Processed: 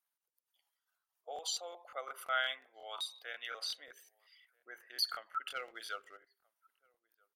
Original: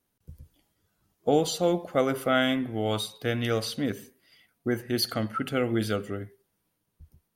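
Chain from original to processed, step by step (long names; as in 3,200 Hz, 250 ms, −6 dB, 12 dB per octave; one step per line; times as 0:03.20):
spectral envelope exaggerated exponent 1.5
high-pass filter 870 Hz 24 dB per octave
0:05.51–0:06.17: leveller curve on the samples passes 1
slap from a distant wall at 220 metres, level −29 dB
regular buffer underruns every 0.18 s, samples 1,024, repeat, from 0:00.62
level −5.5 dB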